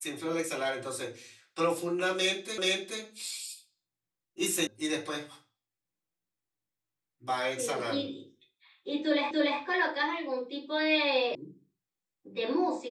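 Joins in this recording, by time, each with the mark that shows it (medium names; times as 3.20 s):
2.58 s: repeat of the last 0.43 s
4.67 s: sound stops dead
9.31 s: repeat of the last 0.29 s
11.35 s: sound stops dead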